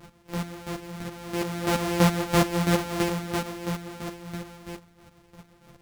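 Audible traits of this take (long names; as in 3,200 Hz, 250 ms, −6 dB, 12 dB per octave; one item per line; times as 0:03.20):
a buzz of ramps at a fixed pitch in blocks of 256 samples
chopped level 3 Hz, depth 65%, duty 25%
a shimmering, thickened sound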